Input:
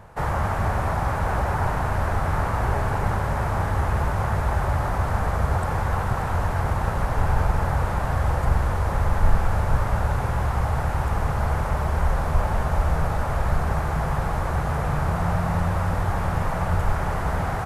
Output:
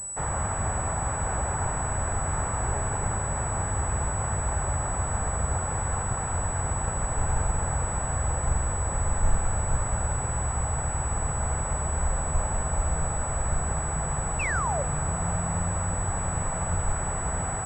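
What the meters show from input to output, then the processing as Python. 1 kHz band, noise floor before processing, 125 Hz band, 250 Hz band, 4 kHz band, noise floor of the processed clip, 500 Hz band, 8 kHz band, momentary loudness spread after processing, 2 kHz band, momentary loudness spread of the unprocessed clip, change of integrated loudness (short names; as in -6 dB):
-5.5 dB, -26 dBFS, -5.5 dB, -5.5 dB, -9.0 dB, -30 dBFS, -5.5 dB, +17.0 dB, 1 LU, -4.5 dB, 2 LU, -3.5 dB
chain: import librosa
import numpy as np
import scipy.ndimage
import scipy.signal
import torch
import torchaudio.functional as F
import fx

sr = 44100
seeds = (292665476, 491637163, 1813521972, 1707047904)

y = fx.spec_paint(x, sr, seeds[0], shape='fall', start_s=14.39, length_s=0.44, low_hz=520.0, high_hz=2800.0, level_db=-24.0)
y = fx.pwm(y, sr, carrier_hz=7900.0)
y = y * 10.0 ** (-5.5 / 20.0)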